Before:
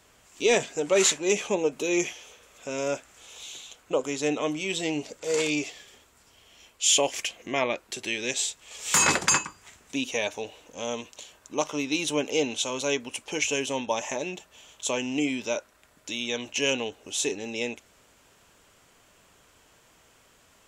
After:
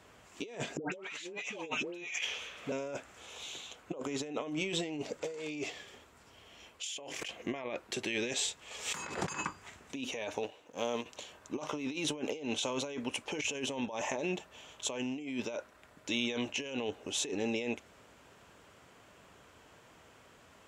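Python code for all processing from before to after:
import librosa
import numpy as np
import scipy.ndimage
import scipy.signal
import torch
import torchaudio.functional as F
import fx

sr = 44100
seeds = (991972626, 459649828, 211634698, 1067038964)

y = fx.chain(x, sr, fx.peak_eq(hz=2700.0, db=10.5, octaves=2.0),
    fx.dispersion(late='highs', ms=150.0, hz=1100.0), at=(0.77, 2.72))
y = fx.chain(y, sr, fx.hum_notches(base_hz=50, count=10),
    fx.env_flatten(amount_pct=100), at=(6.83, 7.28))
y = fx.chain(y, sr, fx.law_mismatch(coded='A'),
    fx.highpass(hz=150.0, slope=6), at=(10.43, 11.06))
y = scipy.signal.sosfilt(scipy.signal.butter(2, 61.0, 'highpass', fs=sr, output='sos'), y)
y = fx.high_shelf(y, sr, hz=4000.0, db=-12.0)
y = fx.over_compress(y, sr, threshold_db=-35.0, ratio=-1.0)
y = y * librosa.db_to_amplitude(-3.0)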